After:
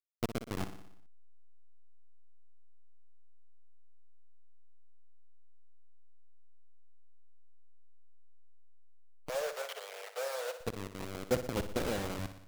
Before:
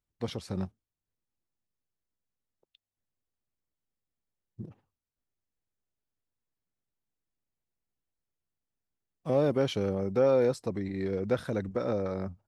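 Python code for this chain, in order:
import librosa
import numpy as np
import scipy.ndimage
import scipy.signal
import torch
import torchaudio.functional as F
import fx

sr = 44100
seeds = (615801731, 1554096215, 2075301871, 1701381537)

y = fx.delta_hold(x, sr, step_db=-26.0)
y = fx.rider(y, sr, range_db=5, speed_s=2.0)
y = fx.cheby_ripple_highpass(y, sr, hz=440.0, ripple_db=3, at=(9.29, 10.61))
y = fx.hpss(y, sr, part='harmonic', gain_db=-8)
y = fx.echo_feedback(y, sr, ms=60, feedback_pct=59, wet_db=-11)
y = F.gain(torch.from_numpy(y), -3.5).numpy()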